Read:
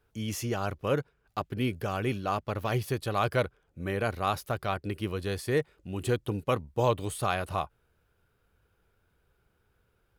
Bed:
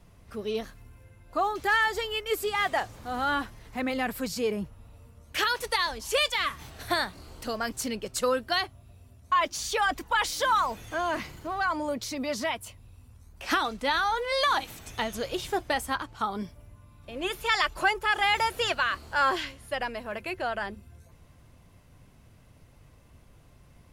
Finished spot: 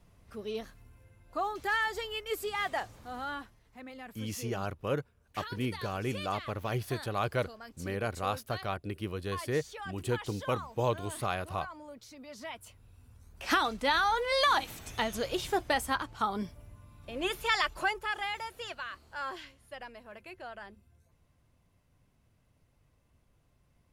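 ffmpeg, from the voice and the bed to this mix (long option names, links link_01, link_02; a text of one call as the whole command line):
ffmpeg -i stem1.wav -i stem2.wav -filter_complex "[0:a]adelay=4000,volume=-4dB[link_01];[1:a]volume=10dB,afade=type=out:start_time=2.87:duration=0.75:silence=0.281838,afade=type=in:start_time=12.3:duration=1.28:silence=0.158489,afade=type=out:start_time=17.21:duration=1.19:silence=0.237137[link_02];[link_01][link_02]amix=inputs=2:normalize=0" out.wav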